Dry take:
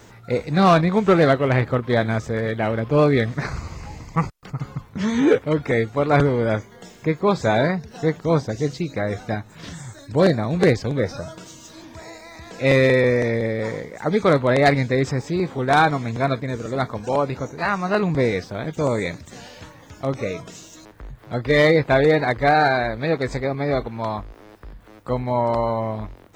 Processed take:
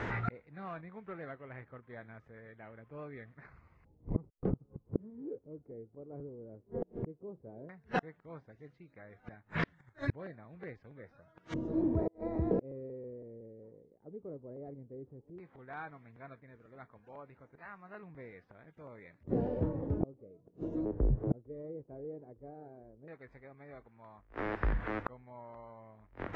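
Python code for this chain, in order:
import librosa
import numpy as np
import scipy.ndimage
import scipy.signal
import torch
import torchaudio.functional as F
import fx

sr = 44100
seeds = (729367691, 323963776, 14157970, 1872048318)

y = fx.gate_flip(x, sr, shuts_db=-27.0, range_db=-39)
y = fx.filter_lfo_lowpass(y, sr, shape='square', hz=0.13, low_hz=420.0, high_hz=1900.0, q=1.8)
y = y * 10.0 ** (8.5 / 20.0)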